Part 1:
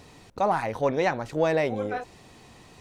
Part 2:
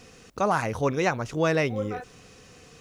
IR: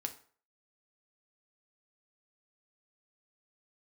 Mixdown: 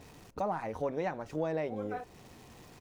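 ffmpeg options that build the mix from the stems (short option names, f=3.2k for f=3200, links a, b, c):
-filter_complex "[0:a]highshelf=f=2.4k:g=-11.5,volume=-2.5dB,asplit=2[a][b];[1:a]acrossover=split=290[c][d];[d]acompressor=threshold=-31dB:ratio=6[e];[c][e]amix=inputs=2:normalize=0,aeval=exprs='val(0)*gte(abs(val(0)),0.00473)':c=same,volume=-1,adelay=6.4,volume=-8dB,asplit=2[f][g];[g]volume=-11.5dB[h];[b]apad=whole_len=123962[i];[f][i]sidechaincompress=threshold=-29dB:ratio=8:attack=16:release=1030[j];[2:a]atrim=start_sample=2205[k];[h][k]afir=irnorm=-1:irlink=0[l];[a][j][l]amix=inputs=3:normalize=0,acompressor=threshold=-41dB:ratio=1.5"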